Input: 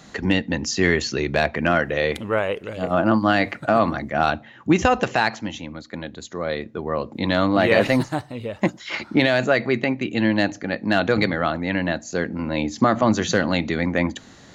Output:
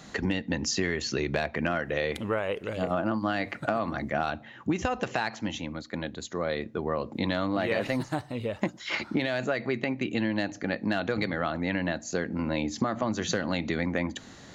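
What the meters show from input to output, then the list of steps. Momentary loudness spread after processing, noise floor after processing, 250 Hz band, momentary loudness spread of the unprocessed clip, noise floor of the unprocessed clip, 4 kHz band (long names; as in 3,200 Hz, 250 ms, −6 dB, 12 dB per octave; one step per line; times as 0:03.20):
5 LU, −49 dBFS, −8.0 dB, 10 LU, −47 dBFS, −7.0 dB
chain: downward compressor, threshold −23 dBFS, peak gain reduction 11.5 dB
level −1.5 dB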